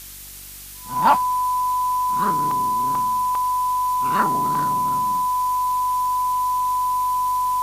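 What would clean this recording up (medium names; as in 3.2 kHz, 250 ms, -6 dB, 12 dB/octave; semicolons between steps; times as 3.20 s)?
de-hum 48.3 Hz, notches 8; band-stop 1 kHz, Q 30; interpolate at 2.51/2.95/3.35/4.55 s, 2.8 ms; noise print and reduce 30 dB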